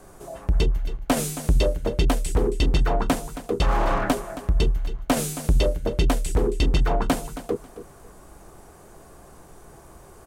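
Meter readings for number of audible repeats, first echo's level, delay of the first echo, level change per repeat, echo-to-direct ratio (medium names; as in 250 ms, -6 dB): 2, -14.0 dB, 271 ms, -14.0 dB, -14.0 dB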